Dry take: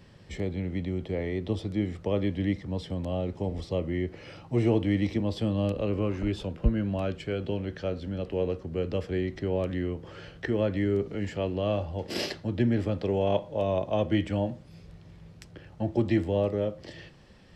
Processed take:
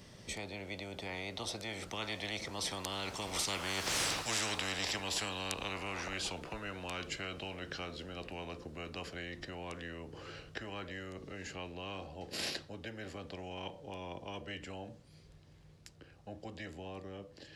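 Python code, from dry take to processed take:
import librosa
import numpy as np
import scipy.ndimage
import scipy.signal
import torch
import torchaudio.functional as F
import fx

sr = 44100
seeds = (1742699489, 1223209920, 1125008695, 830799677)

y = fx.doppler_pass(x, sr, speed_mps=22, closest_m=2.0, pass_at_s=3.99)
y = fx.bass_treble(y, sr, bass_db=-3, treble_db=8)
y = fx.spectral_comp(y, sr, ratio=10.0)
y = F.gain(torch.from_numpy(y), 15.0).numpy()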